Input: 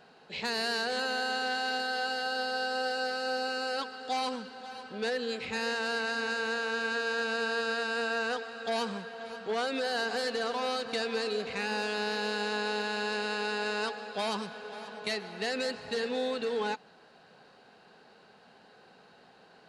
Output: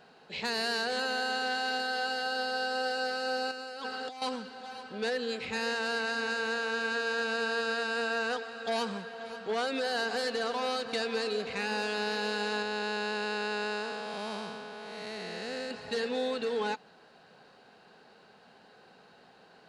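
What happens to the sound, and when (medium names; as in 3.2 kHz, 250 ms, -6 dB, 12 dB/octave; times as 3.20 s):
3.51–4.22 s: compressor with a negative ratio -40 dBFS
12.62–15.71 s: spectral blur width 335 ms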